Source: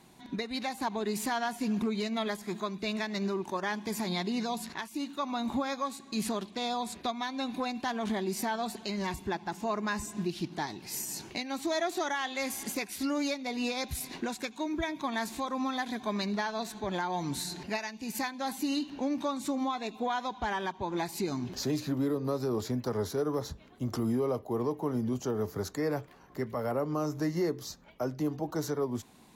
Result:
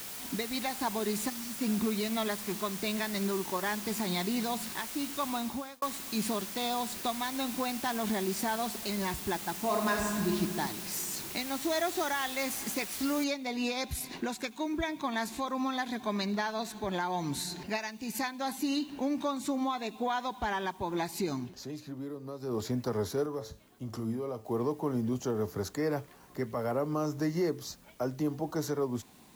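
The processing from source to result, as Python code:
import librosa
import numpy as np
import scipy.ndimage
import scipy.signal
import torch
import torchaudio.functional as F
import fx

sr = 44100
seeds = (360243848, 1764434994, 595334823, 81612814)

y = fx.spec_erase(x, sr, start_s=1.3, length_s=0.28, low_hz=340.0, high_hz=4400.0)
y = fx.reverb_throw(y, sr, start_s=9.57, length_s=0.73, rt60_s=2.0, drr_db=0.0)
y = fx.noise_floor_step(y, sr, seeds[0], at_s=13.24, before_db=-42, after_db=-64, tilt_db=0.0)
y = fx.comb_fb(y, sr, f0_hz=110.0, decay_s=0.36, harmonics='all', damping=0.0, mix_pct=60, at=(23.26, 24.45))
y = fx.edit(y, sr, fx.fade_out_span(start_s=5.32, length_s=0.5),
    fx.fade_down_up(start_s=21.27, length_s=1.4, db=-10.0, fade_s=0.26, curve='qsin'), tone=tone)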